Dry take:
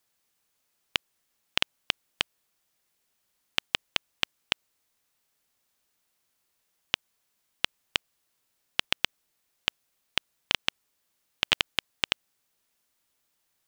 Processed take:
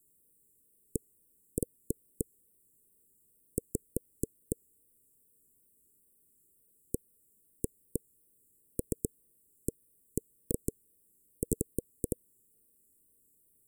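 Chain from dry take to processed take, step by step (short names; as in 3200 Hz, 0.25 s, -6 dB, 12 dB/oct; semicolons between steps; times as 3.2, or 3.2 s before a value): Chebyshev band-stop 470–8000 Hz, order 5; wow and flutter 83 cents; gain +10 dB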